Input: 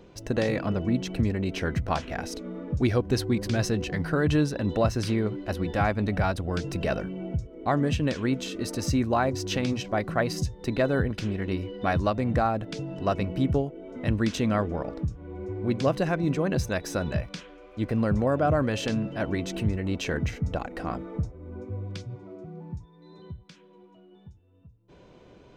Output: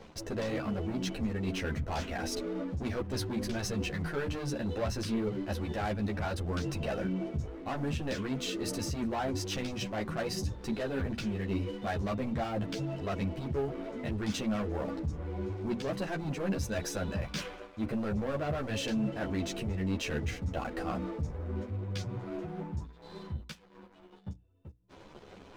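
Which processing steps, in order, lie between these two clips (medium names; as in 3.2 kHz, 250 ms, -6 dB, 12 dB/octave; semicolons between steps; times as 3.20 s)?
waveshaping leveller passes 3; hum notches 60/120/180/240/300 Hz; reverse; compression 5:1, threshold -30 dBFS, peak gain reduction 14 dB; reverse; three-phase chorus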